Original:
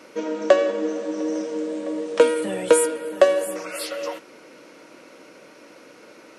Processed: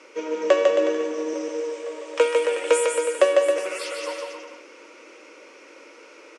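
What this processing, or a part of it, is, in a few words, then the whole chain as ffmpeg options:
phone speaker on a table: -filter_complex "[0:a]asettb=1/sr,asplit=3[a][b][c];[a]atrim=end=1.334[d];[b]atrim=start=1.33:end=3.19,asetpts=PTS-STARTPTS,afade=t=in:d=0.004:c=qsin,afade=t=out:st=1.856:d=0.004:c=qsin,highpass=470[e];[c]atrim=start=3.186[f];[d][e]acrossfade=d=0.004:c1=hsin:c2=qsin[g];[g][f]acrossfade=d=0.004:c1=qsin:c2=hsin,highpass=f=340:w=0.5412,highpass=f=340:w=1.3066,equalizer=f=690:t=q:w=4:g=-9,equalizer=f=1.6k:t=q:w=4:g=-4,equalizer=f=2.4k:t=q:w=4:g=4,equalizer=f=4.1k:t=q:w=4:g=-6,lowpass=f=8.3k:w=0.5412,lowpass=f=8.3k:w=1.3066,aecho=1:1:150|270|366|442.8|504.2:0.631|0.398|0.251|0.158|0.1"

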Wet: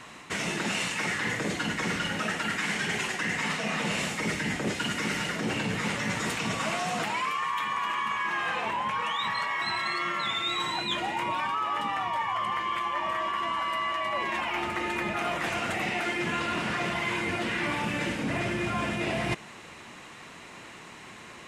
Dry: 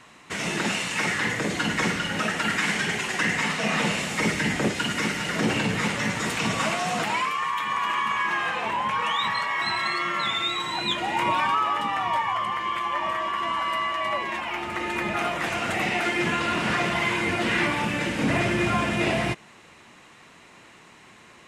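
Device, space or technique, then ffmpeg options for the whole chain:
compression on the reversed sound: -af "areverse,acompressor=threshold=-31dB:ratio=10,areverse,volume=4.5dB"

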